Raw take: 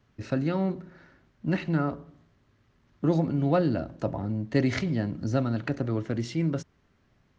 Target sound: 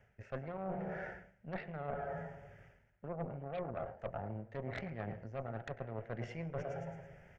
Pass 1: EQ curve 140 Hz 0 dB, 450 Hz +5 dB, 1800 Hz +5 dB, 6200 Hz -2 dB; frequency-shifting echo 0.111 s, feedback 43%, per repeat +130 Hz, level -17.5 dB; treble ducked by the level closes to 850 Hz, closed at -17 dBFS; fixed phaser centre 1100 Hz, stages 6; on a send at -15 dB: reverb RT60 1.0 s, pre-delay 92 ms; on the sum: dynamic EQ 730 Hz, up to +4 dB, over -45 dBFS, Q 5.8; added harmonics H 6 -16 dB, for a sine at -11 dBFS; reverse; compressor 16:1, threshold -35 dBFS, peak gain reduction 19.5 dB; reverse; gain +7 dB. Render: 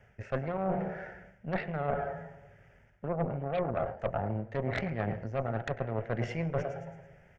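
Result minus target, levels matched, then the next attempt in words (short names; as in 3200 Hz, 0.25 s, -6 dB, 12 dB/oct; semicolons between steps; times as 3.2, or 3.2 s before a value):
compressor: peak gain reduction -9.5 dB
EQ curve 140 Hz 0 dB, 450 Hz +5 dB, 1800 Hz +5 dB, 6200 Hz -2 dB; frequency-shifting echo 0.111 s, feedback 43%, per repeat +130 Hz, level -17.5 dB; treble ducked by the level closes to 850 Hz, closed at -17 dBFS; fixed phaser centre 1100 Hz, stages 6; on a send at -15 dB: reverb RT60 1.0 s, pre-delay 92 ms; on the sum: dynamic EQ 730 Hz, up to +4 dB, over -45 dBFS, Q 5.8; added harmonics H 6 -16 dB, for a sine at -11 dBFS; reverse; compressor 16:1, threshold -45 dBFS, peak gain reduction 29 dB; reverse; gain +7 dB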